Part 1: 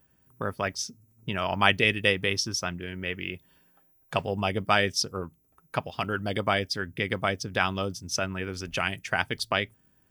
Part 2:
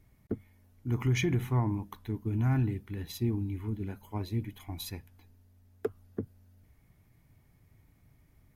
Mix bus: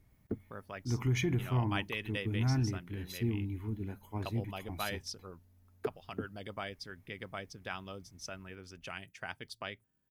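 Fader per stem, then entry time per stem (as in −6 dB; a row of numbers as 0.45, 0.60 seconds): −15.5, −3.0 decibels; 0.10, 0.00 seconds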